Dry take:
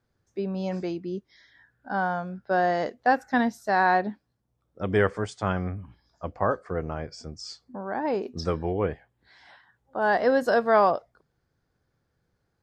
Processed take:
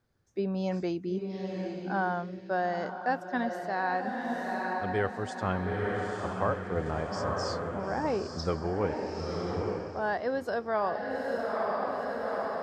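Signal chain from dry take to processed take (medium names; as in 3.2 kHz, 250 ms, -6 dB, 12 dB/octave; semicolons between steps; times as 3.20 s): echo that smears into a reverb 906 ms, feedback 43%, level -4 dB; gain riding within 5 dB 0.5 s; trim -5.5 dB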